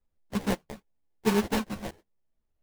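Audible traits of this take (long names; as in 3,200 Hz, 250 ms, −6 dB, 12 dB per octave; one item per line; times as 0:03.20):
phaser sweep stages 2, 0.97 Hz, lowest notch 390–1,100 Hz
aliases and images of a low sample rate 1,300 Hz, jitter 20%
a shimmering, thickened sound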